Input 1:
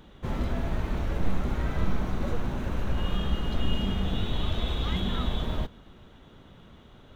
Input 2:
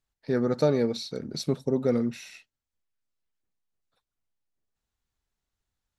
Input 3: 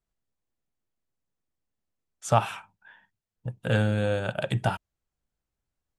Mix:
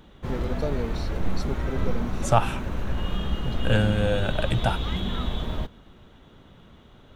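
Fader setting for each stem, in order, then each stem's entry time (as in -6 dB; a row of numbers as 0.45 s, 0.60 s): +0.5 dB, -7.5 dB, +1.5 dB; 0.00 s, 0.00 s, 0.00 s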